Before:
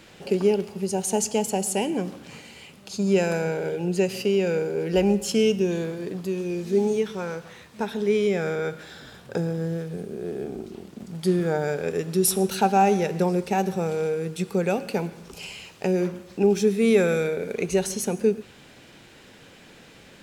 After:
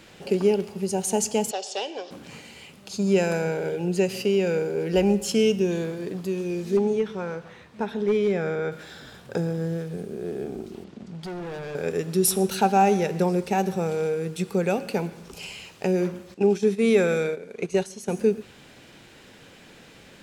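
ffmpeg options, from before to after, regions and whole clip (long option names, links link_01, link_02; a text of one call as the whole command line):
ffmpeg -i in.wav -filter_complex "[0:a]asettb=1/sr,asplit=3[link_01][link_02][link_03];[link_01]atrim=end=1.514[link_04];[link_02]atrim=start=1.51:end=2.11,asetpts=PTS-STARTPTS,afade=type=in:duration=0.004:curve=qsin,afade=type=out:start_time=0.596:duration=0.004:curve=qsin,volume=18.5dB,asoftclip=hard,volume=-18.5dB,highpass=frequency=470:width=0.5412,highpass=frequency=470:width=1.3066,equalizer=frequency=910:width_type=q:width=4:gain=-3,equalizer=frequency=1300:width_type=q:width=4:gain=-5,equalizer=frequency=2100:width_type=q:width=4:gain=-6,equalizer=frequency=3600:width_type=q:width=4:gain=9,equalizer=frequency=5300:width_type=q:width=4:gain=8,lowpass=frequency=5700:width=0.5412,lowpass=frequency=5700:width=1.3066[link_05];[link_03]atrim=start=2.106[link_06];[link_04][link_05]acrossfade=duration=0.004:curve1=hsin:curve2=qsin[link_07];[link_07][link_06]acrossfade=duration=0.004:curve1=qsin:curve2=hsin,asettb=1/sr,asplit=3[link_08][link_09][link_10];[link_08]atrim=end=6.774[link_11];[link_09]atrim=start=6.77:end=8.72,asetpts=PTS-STARTPTS,afade=type=in:duration=0.004:curve=qsin,afade=type=out:start_time=1.946:duration=0.004:curve=qsin,lowpass=frequency=2500:poles=1,asoftclip=type=hard:threshold=-16dB[link_12];[link_10]atrim=start=8.716[link_13];[link_11][link_12]acrossfade=duration=0.004:curve1=hsin:curve2=qsin[link_14];[link_14][link_13]acrossfade=duration=0.004:curve1=qsin:curve2=hsin,asettb=1/sr,asplit=3[link_15][link_16][link_17];[link_15]atrim=end=10.844[link_18];[link_16]atrim=start=10.84:end=11.75,asetpts=PTS-STARTPTS,afade=type=in:duration=0.004:curve=qsin,afade=type=out:start_time=0.906:duration=0.004:curve=qsin,lowpass=5200,volume=29dB,asoftclip=hard,volume=-29dB,acompressor=threshold=-38dB:ratio=1.5:attack=3.2:release=140:knee=1:detection=peak[link_19];[link_17]atrim=start=11.746[link_20];[link_18][link_19]acrossfade=duration=0.004:curve1=hsin:curve2=qsin[link_21];[link_21][link_20]acrossfade=duration=0.004:curve1=qsin:curve2=hsin,asettb=1/sr,asplit=3[link_22][link_23][link_24];[link_22]atrim=end=16.344[link_25];[link_23]atrim=start=16.34:end=18.09,asetpts=PTS-STARTPTS,afade=type=in:duration=0.004:curve=qsin,afade=type=out:start_time=1.746:duration=0.004:curve=qsin,lowpass=10000,agate=range=-10dB:threshold=-27dB:ratio=16:release=100:detection=peak,lowshelf=frequency=73:gain=-11.5[link_26];[link_24]atrim=start=18.086[link_27];[link_25][link_26]acrossfade=duration=0.004:curve1=hsin:curve2=qsin[link_28];[link_28][link_27]acrossfade=duration=0.004:curve1=qsin:curve2=hsin" out.wav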